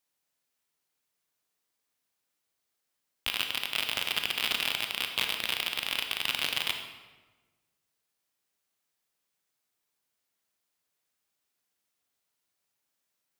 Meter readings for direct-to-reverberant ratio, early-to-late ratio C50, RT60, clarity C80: 4.5 dB, 6.5 dB, 1.3 s, 8.0 dB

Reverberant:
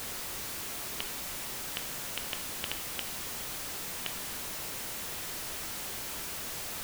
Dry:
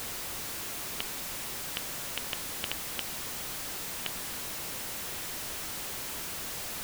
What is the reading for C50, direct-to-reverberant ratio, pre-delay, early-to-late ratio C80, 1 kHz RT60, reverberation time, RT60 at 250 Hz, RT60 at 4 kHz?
11.5 dB, 8.0 dB, 17 ms, 14.5 dB, 0.60 s, 0.60 s, 0.60 s, 0.60 s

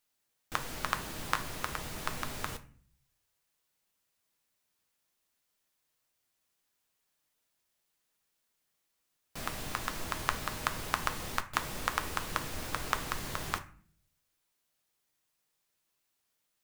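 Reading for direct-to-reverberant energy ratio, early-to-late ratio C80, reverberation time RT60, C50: 7.5 dB, 19.5 dB, 0.50 s, 15.0 dB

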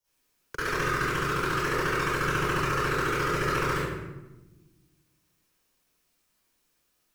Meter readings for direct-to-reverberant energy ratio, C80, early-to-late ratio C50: -14.5 dB, -1.5 dB, -7.5 dB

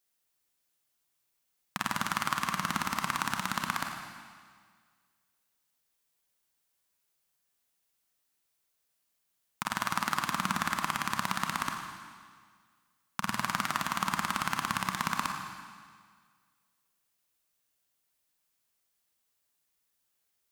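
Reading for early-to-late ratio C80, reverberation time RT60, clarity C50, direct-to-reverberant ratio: 5.5 dB, 1.8 s, 4.0 dB, 3.0 dB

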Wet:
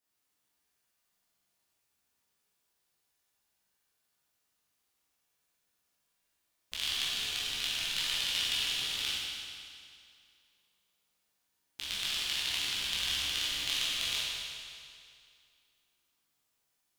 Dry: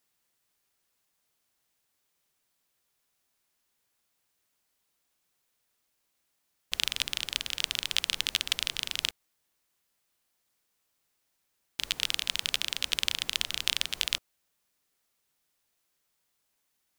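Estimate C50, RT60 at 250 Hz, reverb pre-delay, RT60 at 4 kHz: -3.0 dB, 2.3 s, 14 ms, 2.2 s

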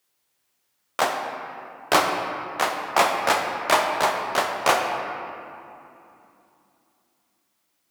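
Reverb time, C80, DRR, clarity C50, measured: 2.8 s, 4.5 dB, 2.0 dB, 3.5 dB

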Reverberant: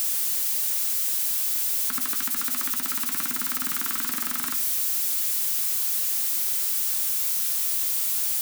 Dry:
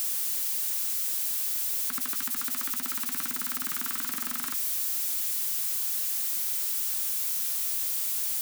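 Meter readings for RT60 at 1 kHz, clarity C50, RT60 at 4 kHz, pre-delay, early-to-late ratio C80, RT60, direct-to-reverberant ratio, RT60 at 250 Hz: 0.65 s, 16.0 dB, 0.55 s, 7 ms, 19.0 dB, 0.80 s, 10.5 dB, 1.1 s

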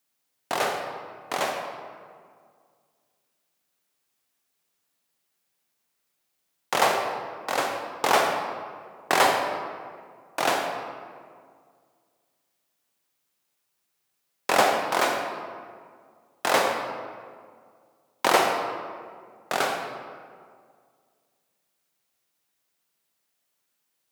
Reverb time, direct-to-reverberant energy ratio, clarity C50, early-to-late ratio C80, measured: 2.0 s, 3.0 dB, 3.5 dB, 5.0 dB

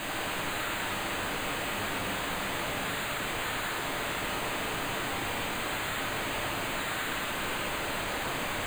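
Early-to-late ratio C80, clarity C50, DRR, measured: 3.5 dB, 2.0 dB, -2.5 dB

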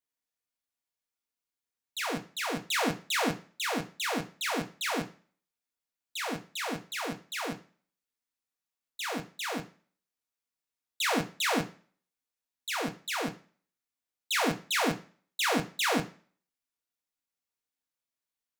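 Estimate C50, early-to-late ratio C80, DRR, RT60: 16.0 dB, 20.0 dB, 3.0 dB, not exponential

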